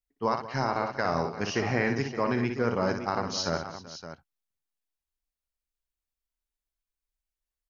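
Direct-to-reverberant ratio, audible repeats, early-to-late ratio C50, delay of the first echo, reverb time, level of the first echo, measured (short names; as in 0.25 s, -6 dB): none, 4, none, 59 ms, none, -6.5 dB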